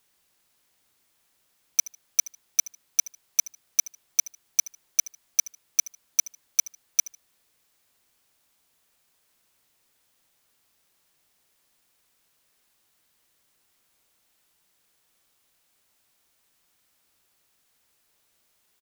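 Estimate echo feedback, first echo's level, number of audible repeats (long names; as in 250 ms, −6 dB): 26%, −20.0 dB, 2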